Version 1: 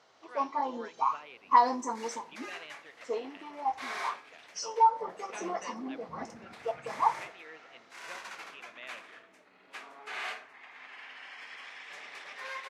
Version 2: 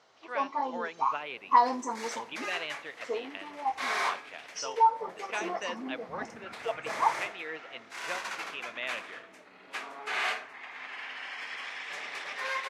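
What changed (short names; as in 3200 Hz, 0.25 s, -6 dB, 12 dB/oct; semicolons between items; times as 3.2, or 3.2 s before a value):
speech +10.5 dB; second sound +7.0 dB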